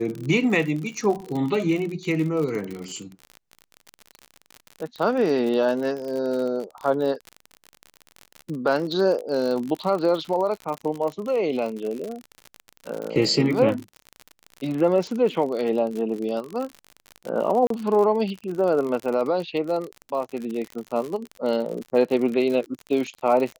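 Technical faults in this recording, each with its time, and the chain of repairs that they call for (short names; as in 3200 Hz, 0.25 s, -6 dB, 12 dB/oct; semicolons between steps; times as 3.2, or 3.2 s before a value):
crackle 55/s -28 dBFS
17.67–17.7 gap 33 ms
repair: de-click; interpolate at 17.67, 33 ms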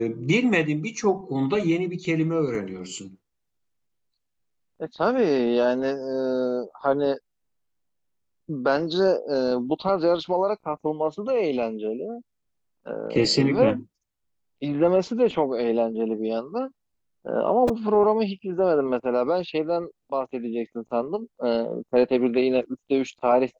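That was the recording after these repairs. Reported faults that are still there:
none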